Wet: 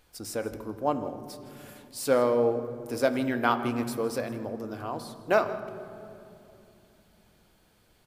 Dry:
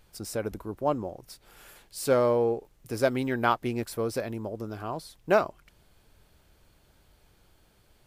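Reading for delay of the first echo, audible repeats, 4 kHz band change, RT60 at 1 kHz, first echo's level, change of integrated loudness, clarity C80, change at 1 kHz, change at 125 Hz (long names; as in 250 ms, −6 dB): 161 ms, 1, +0.5 dB, 2.6 s, −17.5 dB, 0.0 dB, 11.5 dB, 0.0 dB, −3.0 dB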